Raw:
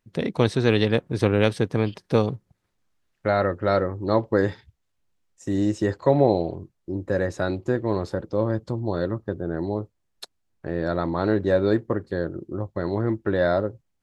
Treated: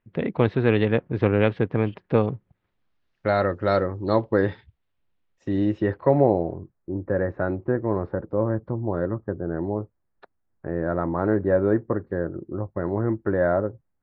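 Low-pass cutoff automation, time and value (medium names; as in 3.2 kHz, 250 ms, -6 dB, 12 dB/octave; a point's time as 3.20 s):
low-pass 24 dB/octave
2.32 s 2.7 kHz
3.40 s 6.2 kHz
3.96 s 6.2 kHz
4.36 s 3.7 kHz
5.55 s 3.7 kHz
6.44 s 1.8 kHz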